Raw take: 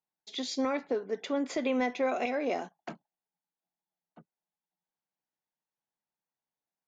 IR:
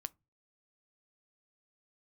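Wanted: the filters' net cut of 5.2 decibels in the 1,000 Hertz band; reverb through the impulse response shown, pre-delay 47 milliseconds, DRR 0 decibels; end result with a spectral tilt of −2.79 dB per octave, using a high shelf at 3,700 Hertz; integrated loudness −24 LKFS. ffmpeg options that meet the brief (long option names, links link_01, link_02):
-filter_complex "[0:a]equalizer=frequency=1000:width_type=o:gain=-7.5,highshelf=frequency=3700:gain=-8,asplit=2[link_01][link_02];[1:a]atrim=start_sample=2205,adelay=47[link_03];[link_02][link_03]afir=irnorm=-1:irlink=0,volume=3dB[link_04];[link_01][link_04]amix=inputs=2:normalize=0,volume=7dB"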